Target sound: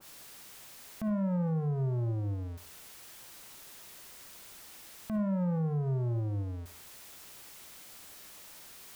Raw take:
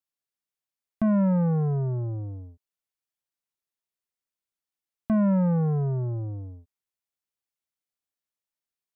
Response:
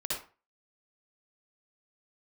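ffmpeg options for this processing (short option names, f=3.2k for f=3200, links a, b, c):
-filter_complex "[0:a]aeval=exprs='val(0)+0.5*0.00473*sgn(val(0))':c=same,acompressor=threshold=-39dB:ratio=2.5,asplit=2[a][b];[1:a]atrim=start_sample=2205[c];[b][c]afir=irnorm=-1:irlink=0,volume=-14.5dB[d];[a][d]amix=inputs=2:normalize=0,alimiter=level_in=6.5dB:limit=-24dB:level=0:latency=1:release=76,volume=-6.5dB,adynamicequalizer=threshold=0.00112:dfrequency=1700:dqfactor=0.7:tfrequency=1700:tqfactor=0.7:attack=5:release=100:ratio=0.375:range=1.5:mode=cutabove:tftype=highshelf,volume=3.5dB"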